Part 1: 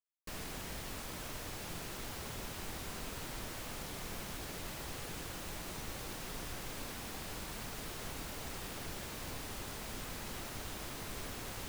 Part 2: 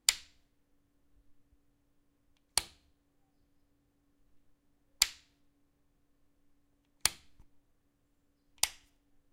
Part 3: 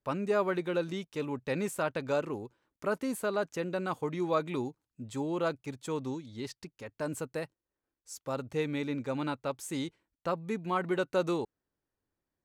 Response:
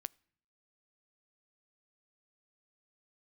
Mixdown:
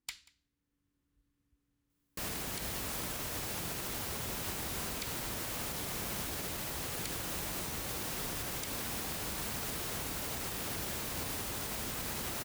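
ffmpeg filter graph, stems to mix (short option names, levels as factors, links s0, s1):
-filter_complex "[0:a]highshelf=f=8600:g=7,adelay=1900,volume=1.06[s0];[1:a]equalizer=f=630:w=1.6:g=-11.5,asoftclip=type=hard:threshold=0.0891,volume=0.335,asplit=2[s1][s2];[s2]volume=0.0708,aecho=0:1:186:1[s3];[s0][s1][s3]amix=inputs=3:normalize=0,highpass=45,dynaudnorm=f=270:g=5:m=2,alimiter=level_in=1.58:limit=0.0631:level=0:latency=1:release=110,volume=0.631"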